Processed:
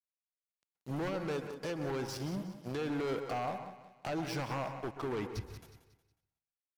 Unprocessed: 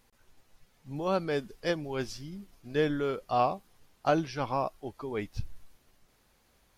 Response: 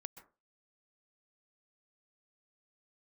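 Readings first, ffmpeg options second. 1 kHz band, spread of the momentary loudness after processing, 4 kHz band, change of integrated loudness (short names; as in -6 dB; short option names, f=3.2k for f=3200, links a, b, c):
-8.0 dB, 9 LU, -4.5 dB, -6.0 dB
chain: -filter_complex "[0:a]aeval=exprs='sgn(val(0))*max(abs(val(0))-0.00473,0)':c=same,acompressor=threshold=-33dB:ratio=4,alimiter=level_in=9dB:limit=-24dB:level=0:latency=1:release=228,volume=-9dB,highpass=79,aeval=exprs='0.0282*sin(PI/2*2.51*val(0)/0.0282)':c=same,aecho=1:1:182|364|546|728:0.251|0.0904|0.0326|0.0117[a];[1:a]atrim=start_sample=2205[b];[a][b]afir=irnorm=-1:irlink=0,adynamicequalizer=threshold=0.00112:dfrequency=2200:dqfactor=0.7:tfrequency=2200:tqfactor=0.7:attack=5:release=100:ratio=0.375:range=2:mode=cutabove:tftype=highshelf,volume=4.5dB"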